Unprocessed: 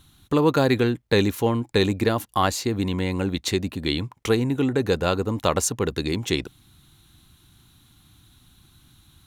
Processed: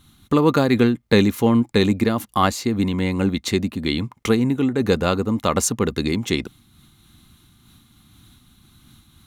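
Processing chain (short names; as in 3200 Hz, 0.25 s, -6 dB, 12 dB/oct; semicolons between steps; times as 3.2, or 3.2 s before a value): small resonant body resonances 220/1200/2100 Hz, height 8 dB; noise-modulated level, depth 55%; gain +4 dB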